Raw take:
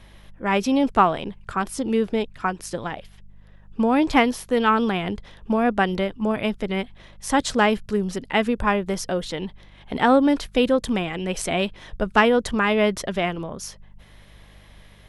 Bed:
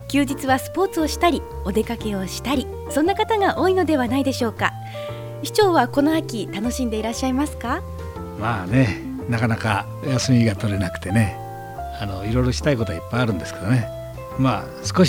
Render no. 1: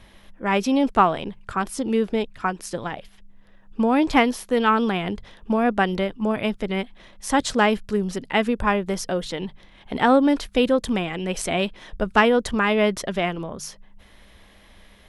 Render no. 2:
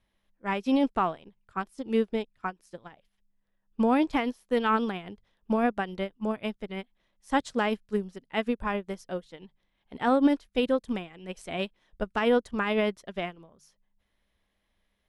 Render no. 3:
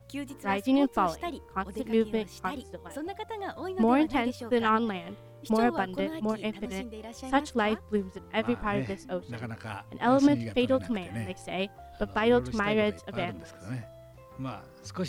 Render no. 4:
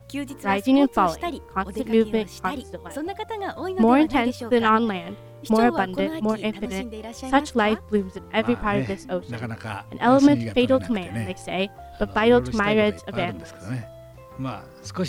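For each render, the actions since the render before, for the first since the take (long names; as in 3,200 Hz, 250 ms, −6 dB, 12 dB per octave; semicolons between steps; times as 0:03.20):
hum removal 50 Hz, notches 3
brickwall limiter −11.5 dBFS, peak gain reduction 8.5 dB; expander for the loud parts 2.5 to 1, over −33 dBFS
mix in bed −18 dB
level +6.5 dB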